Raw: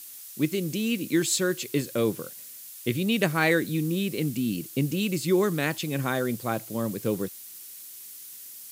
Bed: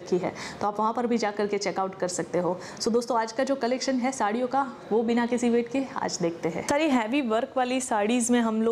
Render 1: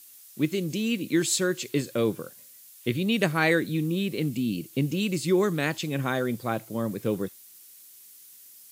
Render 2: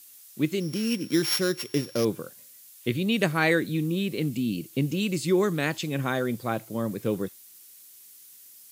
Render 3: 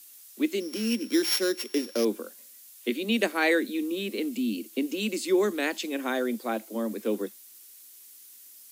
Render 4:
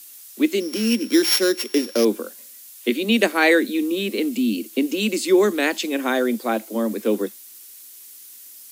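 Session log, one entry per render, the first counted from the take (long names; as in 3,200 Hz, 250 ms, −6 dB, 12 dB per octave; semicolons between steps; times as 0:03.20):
noise reduction from a noise print 7 dB
0:00.60–0:02.05: samples sorted by size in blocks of 8 samples
Butterworth high-pass 210 Hz 96 dB per octave; dynamic equaliser 1,200 Hz, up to −4 dB, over −45 dBFS, Q 2.4
level +7.5 dB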